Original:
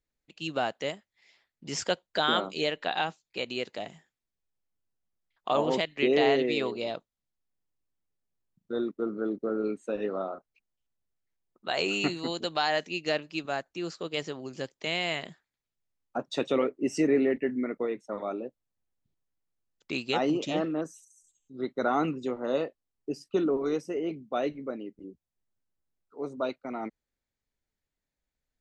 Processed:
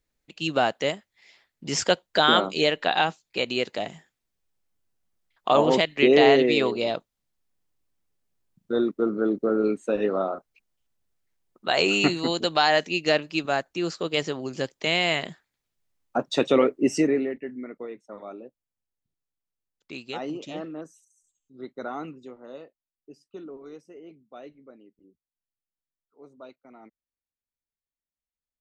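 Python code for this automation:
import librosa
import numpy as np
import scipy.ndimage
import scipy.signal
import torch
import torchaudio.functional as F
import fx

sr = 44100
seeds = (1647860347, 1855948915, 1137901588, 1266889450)

y = fx.gain(x, sr, db=fx.line((16.91, 7.0), (17.36, -6.0), (21.79, -6.0), (22.61, -14.0)))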